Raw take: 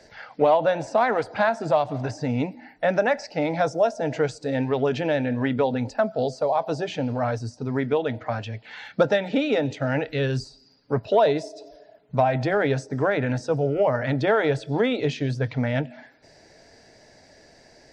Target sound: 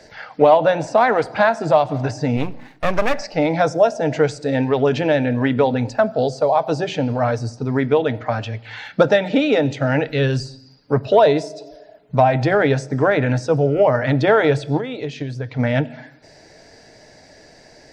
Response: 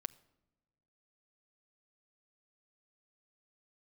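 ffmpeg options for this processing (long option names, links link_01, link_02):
-filter_complex "[0:a]asplit=3[link_01][link_02][link_03];[link_01]afade=type=out:start_time=2.36:duration=0.02[link_04];[link_02]aeval=exprs='max(val(0),0)':channel_layout=same,afade=type=in:start_time=2.36:duration=0.02,afade=type=out:start_time=3.13:duration=0.02[link_05];[link_03]afade=type=in:start_time=3.13:duration=0.02[link_06];[link_04][link_05][link_06]amix=inputs=3:normalize=0,asplit=3[link_07][link_08][link_09];[link_07]afade=type=out:start_time=14.77:duration=0.02[link_10];[link_08]acompressor=threshold=-29dB:ratio=12,afade=type=in:start_time=14.77:duration=0.02,afade=type=out:start_time=15.58:duration=0.02[link_11];[link_09]afade=type=in:start_time=15.58:duration=0.02[link_12];[link_10][link_11][link_12]amix=inputs=3:normalize=0,asplit=2[link_13][link_14];[1:a]atrim=start_sample=2205,afade=type=out:start_time=0.43:duration=0.01,atrim=end_sample=19404[link_15];[link_14][link_15]afir=irnorm=-1:irlink=0,volume=16.5dB[link_16];[link_13][link_16]amix=inputs=2:normalize=0,volume=-9.5dB"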